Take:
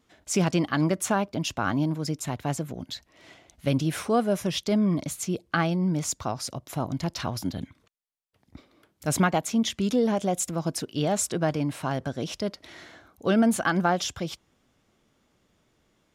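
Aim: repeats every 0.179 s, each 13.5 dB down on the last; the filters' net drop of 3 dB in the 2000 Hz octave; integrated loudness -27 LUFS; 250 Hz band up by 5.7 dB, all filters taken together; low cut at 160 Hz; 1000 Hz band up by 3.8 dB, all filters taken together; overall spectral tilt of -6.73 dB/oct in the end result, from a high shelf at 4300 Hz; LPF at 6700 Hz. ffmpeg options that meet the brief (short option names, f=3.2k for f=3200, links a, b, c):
-af "highpass=160,lowpass=6.7k,equalizer=f=250:t=o:g=8.5,equalizer=f=1k:t=o:g=6.5,equalizer=f=2k:t=o:g=-7,highshelf=f=4.3k:g=-5,aecho=1:1:179|358:0.211|0.0444,volume=-4dB"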